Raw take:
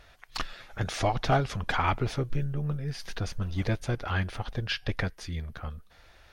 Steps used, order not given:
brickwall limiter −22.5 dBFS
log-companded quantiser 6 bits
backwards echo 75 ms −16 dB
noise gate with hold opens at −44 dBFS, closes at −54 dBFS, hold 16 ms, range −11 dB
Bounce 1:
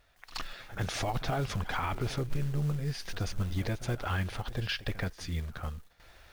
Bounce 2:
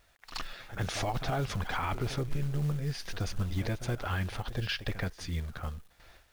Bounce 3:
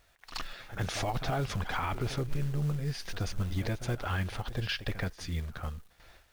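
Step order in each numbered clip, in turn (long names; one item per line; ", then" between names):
log-companded quantiser, then brickwall limiter, then backwards echo, then noise gate with hold
noise gate with hold, then backwards echo, then log-companded quantiser, then brickwall limiter
noise gate with hold, then log-companded quantiser, then backwards echo, then brickwall limiter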